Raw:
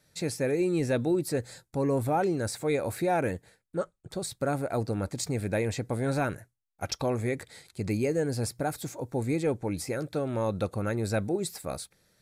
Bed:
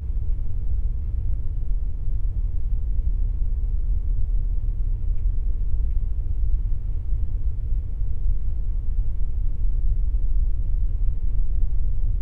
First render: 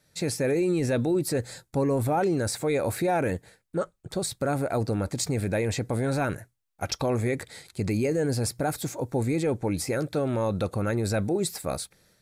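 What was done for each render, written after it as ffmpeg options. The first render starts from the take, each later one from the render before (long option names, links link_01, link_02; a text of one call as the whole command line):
ffmpeg -i in.wav -af "dynaudnorm=framelen=120:gausssize=3:maxgain=5dB,alimiter=limit=-17.5dB:level=0:latency=1:release=12" out.wav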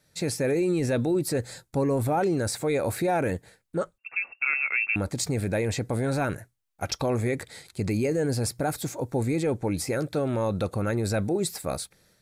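ffmpeg -i in.wav -filter_complex "[0:a]asettb=1/sr,asplit=3[link_01][link_02][link_03];[link_01]atrim=end=3.984[link_04];[link_02]atrim=start=3.98:end=4.96,asetpts=PTS-STARTPTS,afade=type=in:duration=0.004:curve=qsin,afade=type=out:start_time=0.976:duration=0.004:curve=qsin,lowpass=frequency=2400:width_type=q:width=0.5098,lowpass=frequency=2400:width_type=q:width=0.6013,lowpass=frequency=2400:width_type=q:width=0.9,lowpass=frequency=2400:width_type=q:width=2.563,afreqshift=-2800[link_05];[link_03]atrim=start=4.956[link_06];[link_04][link_05]acrossfade=duration=0.004:curve1=hsin:curve2=qsin[link_07];[link_07][link_06]acrossfade=duration=0.004:curve1=qsin:curve2=hsin" out.wav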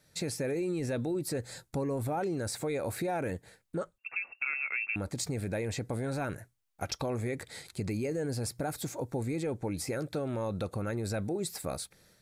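ffmpeg -i in.wav -af "acompressor=threshold=-36dB:ratio=2" out.wav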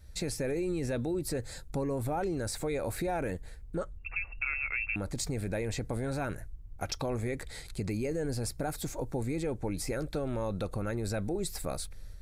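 ffmpeg -i in.wav -i bed.wav -filter_complex "[1:a]volume=-23.5dB[link_01];[0:a][link_01]amix=inputs=2:normalize=0" out.wav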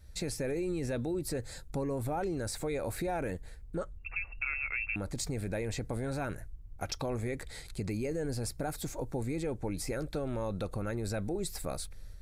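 ffmpeg -i in.wav -af "volume=-1.5dB" out.wav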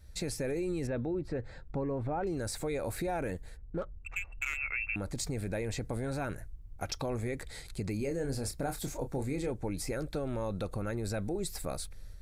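ffmpeg -i in.wav -filter_complex "[0:a]asettb=1/sr,asplit=3[link_01][link_02][link_03];[link_01]atrim=end=0.874[link_04];[link_02]atrim=start=0.87:end=2.27,asetpts=PTS-STARTPTS,afade=type=in:duration=0.004:curve=qsin,afade=type=out:start_time=1.396:duration=0.004:curve=qsin,lowpass=2200[link_05];[link_03]atrim=start=2.266[link_06];[link_04][link_05]acrossfade=duration=0.004:curve1=hsin:curve2=qsin[link_07];[link_07][link_06]acrossfade=duration=0.004:curve1=qsin:curve2=hsin,asplit=3[link_08][link_09][link_10];[link_08]afade=type=out:start_time=3.56:duration=0.02[link_11];[link_09]adynamicsmooth=sensitivity=7:basefreq=1300,afade=type=in:start_time=3.56:duration=0.02,afade=type=out:start_time=4.56:duration=0.02[link_12];[link_10]afade=type=in:start_time=4.56:duration=0.02[link_13];[link_11][link_12][link_13]amix=inputs=3:normalize=0,asettb=1/sr,asplit=3[link_14][link_15][link_16];[link_14]atrim=end=7.964[link_17];[link_15]atrim=start=7.96:end=9.51,asetpts=PTS-STARTPTS,afade=type=in:duration=0.004:curve=qsin,afade=type=out:start_time=1.546:duration=0.004:curve=qsin,asplit=2[link_18][link_19];[link_19]adelay=29,volume=-8dB[link_20];[link_18][link_20]amix=inputs=2:normalize=0,atrim=end_sample=68355[link_21];[link_16]atrim=start=9.506[link_22];[link_17][link_21]acrossfade=duration=0.004:curve1=hsin:curve2=qsin[link_23];[link_23][link_22]acrossfade=duration=0.004:curve1=qsin:curve2=hsin" out.wav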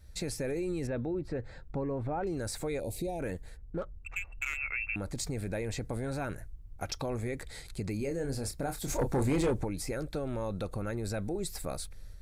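ffmpeg -i in.wav -filter_complex "[0:a]asplit=3[link_01][link_02][link_03];[link_01]afade=type=out:start_time=2.79:duration=0.02[link_04];[link_02]asuperstop=centerf=1400:order=4:qfactor=0.61,afade=type=in:start_time=2.79:duration=0.02,afade=type=out:start_time=3.19:duration=0.02[link_05];[link_03]afade=type=in:start_time=3.19:duration=0.02[link_06];[link_04][link_05][link_06]amix=inputs=3:normalize=0,asplit=3[link_07][link_08][link_09];[link_07]afade=type=out:start_time=8.88:duration=0.02[link_10];[link_08]aeval=exprs='0.0668*sin(PI/2*1.78*val(0)/0.0668)':channel_layout=same,afade=type=in:start_time=8.88:duration=0.02,afade=type=out:start_time=9.63:duration=0.02[link_11];[link_09]afade=type=in:start_time=9.63:duration=0.02[link_12];[link_10][link_11][link_12]amix=inputs=3:normalize=0" out.wav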